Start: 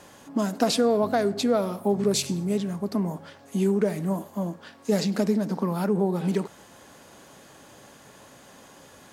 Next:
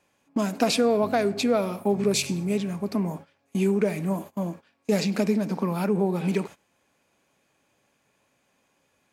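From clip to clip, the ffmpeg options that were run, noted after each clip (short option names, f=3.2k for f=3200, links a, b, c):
-af "agate=range=-20dB:threshold=-38dB:ratio=16:detection=peak,equalizer=f=2.4k:t=o:w=0.27:g=11.5"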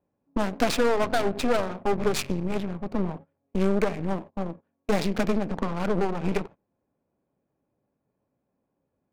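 -af "aeval=exprs='0.376*(cos(1*acos(clip(val(0)/0.376,-1,1)))-cos(1*PI/2))+0.0668*(cos(8*acos(clip(val(0)/0.376,-1,1)))-cos(8*PI/2))':c=same,adynamicsmooth=sensitivity=4.5:basefreq=620,volume=-2.5dB"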